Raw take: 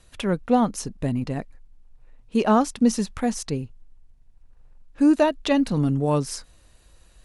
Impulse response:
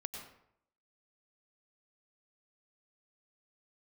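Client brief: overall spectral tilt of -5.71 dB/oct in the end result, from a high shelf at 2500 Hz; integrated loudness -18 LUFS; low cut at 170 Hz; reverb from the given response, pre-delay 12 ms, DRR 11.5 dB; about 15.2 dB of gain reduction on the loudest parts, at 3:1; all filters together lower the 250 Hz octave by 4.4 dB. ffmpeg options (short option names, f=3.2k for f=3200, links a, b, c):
-filter_complex "[0:a]highpass=170,equalizer=f=250:t=o:g=-4,highshelf=f=2.5k:g=-8.5,acompressor=threshold=-38dB:ratio=3,asplit=2[a][b];[1:a]atrim=start_sample=2205,adelay=12[c];[b][c]afir=irnorm=-1:irlink=0,volume=-10dB[d];[a][d]amix=inputs=2:normalize=0,volume=21dB"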